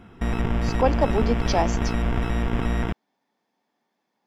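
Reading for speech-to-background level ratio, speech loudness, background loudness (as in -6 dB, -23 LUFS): 1.0 dB, -25.0 LUFS, -26.0 LUFS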